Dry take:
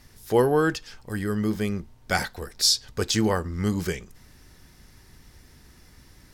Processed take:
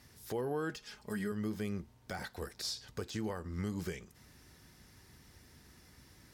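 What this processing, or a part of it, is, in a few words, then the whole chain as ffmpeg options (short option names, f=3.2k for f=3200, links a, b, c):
podcast mastering chain: -filter_complex "[0:a]asettb=1/sr,asplit=3[a][b][c];[a]atrim=end=0.694[d];[b]atrim=start=0.69:end=1.32,asetpts=PTS-STARTPTS,afade=t=in:d=0.004:c=qsin,afade=t=out:st=0.626:d=0.004:c=qsin,aecho=1:1:4.8:0.7,atrim=end_sample=27783[e];[c]atrim=start=1.316[f];[d][e]acrossfade=d=0.004:c1=hsin:c2=qsin[g];[g][f]acrossfade=d=0.004:c1=qsin:c2=hsin,highpass=67,deesser=0.75,acompressor=threshold=-26dB:ratio=2.5,alimiter=limit=-22dB:level=0:latency=1:release=303,volume=-5dB" -ar 48000 -c:a libmp3lame -b:a 96k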